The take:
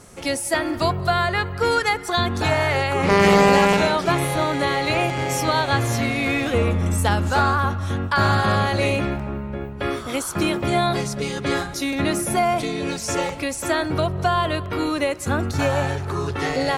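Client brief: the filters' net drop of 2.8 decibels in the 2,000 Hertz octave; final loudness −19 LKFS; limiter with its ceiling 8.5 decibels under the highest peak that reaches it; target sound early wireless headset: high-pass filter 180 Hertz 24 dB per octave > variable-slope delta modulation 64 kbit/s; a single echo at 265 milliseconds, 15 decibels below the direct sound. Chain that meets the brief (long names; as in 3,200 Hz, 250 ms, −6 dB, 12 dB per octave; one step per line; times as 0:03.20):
parametric band 2,000 Hz −3.5 dB
brickwall limiter −12 dBFS
high-pass filter 180 Hz 24 dB per octave
single-tap delay 265 ms −15 dB
variable-slope delta modulation 64 kbit/s
level +5 dB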